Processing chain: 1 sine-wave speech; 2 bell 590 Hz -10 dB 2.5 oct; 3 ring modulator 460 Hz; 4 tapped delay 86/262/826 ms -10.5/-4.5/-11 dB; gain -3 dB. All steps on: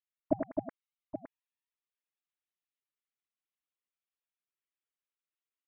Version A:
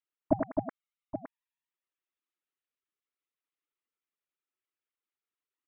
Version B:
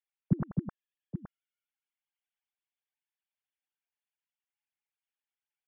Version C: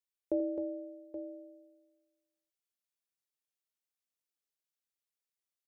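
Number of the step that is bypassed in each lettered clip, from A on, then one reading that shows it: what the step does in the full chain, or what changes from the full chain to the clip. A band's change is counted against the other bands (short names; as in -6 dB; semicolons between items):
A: 2, momentary loudness spread change -1 LU; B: 3, crest factor change -2.5 dB; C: 1, crest factor change -9.5 dB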